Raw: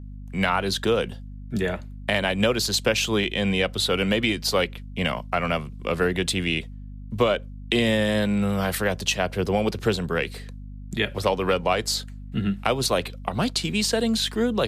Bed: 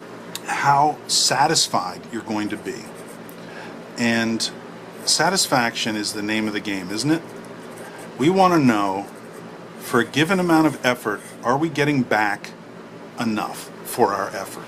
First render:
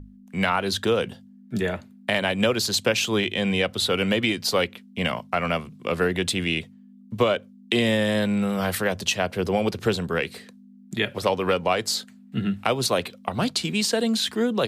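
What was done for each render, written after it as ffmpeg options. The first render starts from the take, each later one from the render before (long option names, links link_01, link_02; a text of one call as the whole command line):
ffmpeg -i in.wav -af "bandreject=frequency=50:width_type=h:width=6,bandreject=frequency=100:width_type=h:width=6,bandreject=frequency=150:width_type=h:width=6" out.wav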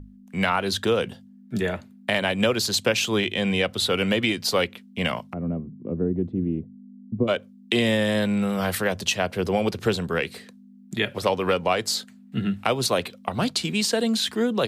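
ffmpeg -i in.wav -filter_complex "[0:a]asplit=3[link_01][link_02][link_03];[link_01]afade=type=out:start_time=5.32:duration=0.02[link_04];[link_02]lowpass=frequency=290:width_type=q:width=1.6,afade=type=in:start_time=5.32:duration=0.02,afade=type=out:start_time=7.27:duration=0.02[link_05];[link_03]afade=type=in:start_time=7.27:duration=0.02[link_06];[link_04][link_05][link_06]amix=inputs=3:normalize=0" out.wav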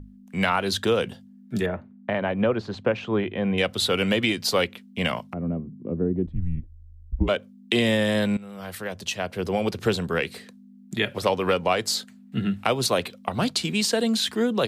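ffmpeg -i in.wav -filter_complex "[0:a]asettb=1/sr,asplit=3[link_01][link_02][link_03];[link_01]atrim=end=1.664[link_04];[link_02]atrim=start=1.66:end=3.58,asetpts=PTS-STARTPTS,afade=type=in:duration=0.004:curve=qsin,afade=type=out:start_time=1.916:duration=0.004:curve=qsin,lowpass=1400[link_05];[link_03]atrim=start=3.576[link_06];[link_04][link_05]acrossfade=duration=0.004:curve1=hsin:curve2=qsin[link_07];[link_07][link_06]acrossfade=duration=0.004:curve1=qsin:curve2=hsin,asettb=1/sr,asplit=3[link_08][link_09][link_10];[link_08]atrim=end=6.264[link_11];[link_09]atrim=start=6.26:end=7.29,asetpts=PTS-STARTPTS,afade=type=in:duration=0.004:curve=qsin,afade=type=out:start_time=1.026:duration=0.004:curve=qsin,afreqshift=-170[link_12];[link_10]atrim=start=7.286[link_13];[link_11][link_12]acrossfade=duration=0.004:curve1=hsin:curve2=qsin[link_14];[link_14][link_13]acrossfade=duration=0.004:curve1=qsin:curve2=hsin,asplit=2[link_15][link_16];[link_15]atrim=end=8.37,asetpts=PTS-STARTPTS,afade=type=out:start_time=8.366:duration=0.004:curve=hsin:silence=0.105925[link_17];[link_16]atrim=start=8.37,asetpts=PTS-STARTPTS,afade=type=in:duration=1.54:silence=0.105925[link_18];[link_17][link_18]concat=n=2:v=0:a=1" out.wav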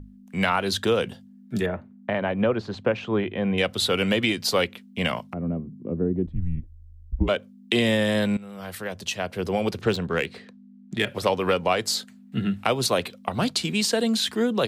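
ffmpeg -i in.wav -filter_complex "[0:a]asettb=1/sr,asplit=3[link_01][link_02][link_03];[link_01]atrim=end=9.814[link_04];[link_02]atrim=start=9.81:end=11.07,asetpts=PTS-STARTPTS,afade=type=in:duration=0.004:curve=qsin,afade=type=out:start_time=1.256:duration=0.004:curve=qsin,adynamicsmooth=sensitivity=3.5:basefreq=3800[link_05];[link_03]atrim=start=11.066[link_06];[link_04][link_05]acrossfade=duration=0.004:curve1=hsin:curve2=qsin[link_07];[link_07][link_06]acrossfade=duration=0.004:curve1=qsin:curve2=hsin" out.wav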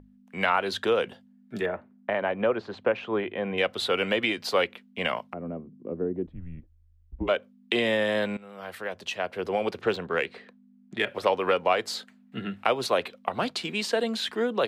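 ffmpeg -i in.wav -af "bass=frequency=250:gain=-14,treble=frequency=4000:gain=-12" out.wav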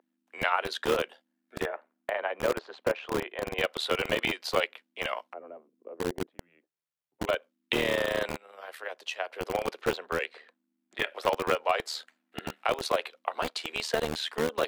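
ffmpeg -i in.wav -filter_complex "[0:a]tremolo=f=77:d=0.621,acrossover=split=410|3700[link_01][link_02][link_03];[link_01]acrusher=bits=4:mix=0:aa=0.000001[link_04];[link_04][link_02][link_03]amix=inputs=3:normalize=0" out.wav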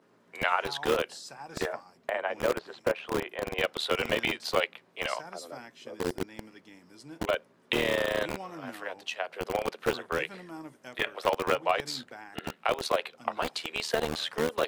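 ffmpeg -i in.wav -i bed.wav -filter_complex "[1:a]volume=-27dB[link_01];[0:a][link_01]amix=inputs=2:normalize=0" out.wav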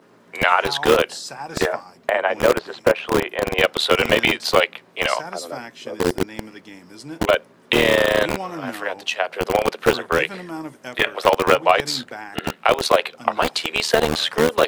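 ffmpeg -i in.wav -af "volume=11.5dB,alimiter=limit=-1dB:level=0:latency=1" out.wav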